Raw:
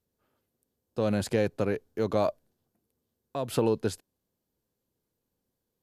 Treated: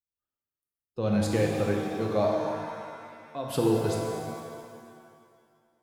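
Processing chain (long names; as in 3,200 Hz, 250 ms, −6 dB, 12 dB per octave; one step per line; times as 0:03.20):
spectral dynamics exaggerated over time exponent 1.5
reverb with rising layers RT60 2.1 s, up +7 semitones, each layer −8 dB, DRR −0.5 dB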